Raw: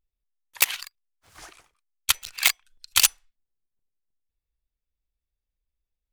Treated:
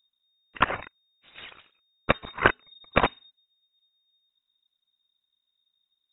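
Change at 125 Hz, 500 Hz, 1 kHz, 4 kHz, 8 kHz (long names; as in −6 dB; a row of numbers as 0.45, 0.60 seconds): can't be measured, +19.5 dB, +10.0 dB, −12.0 dB, below −40 dB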